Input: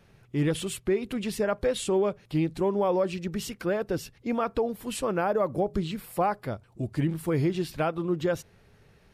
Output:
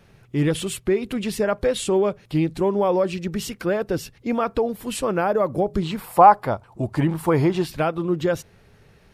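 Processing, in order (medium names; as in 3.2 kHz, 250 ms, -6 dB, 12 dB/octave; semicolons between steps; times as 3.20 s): 5.82–7.66 s: peaking EQ 910 Hz +13 dB 1.1 oct; trim +5 dB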